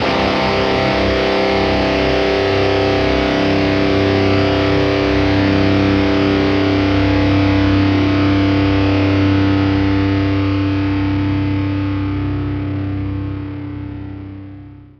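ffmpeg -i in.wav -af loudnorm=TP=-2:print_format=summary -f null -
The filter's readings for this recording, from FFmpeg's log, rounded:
Input Integrated:    -15.5 LUFS
Input True Peak:      -2.5 dBTP
Input LRA:             9.6 LU
Input Threshold:     -26.1 LUFS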